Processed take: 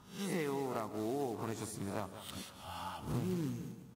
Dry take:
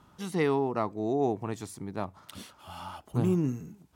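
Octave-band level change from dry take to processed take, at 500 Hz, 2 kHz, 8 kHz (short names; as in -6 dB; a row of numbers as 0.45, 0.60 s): -9.5, -6.0, +0.5 dB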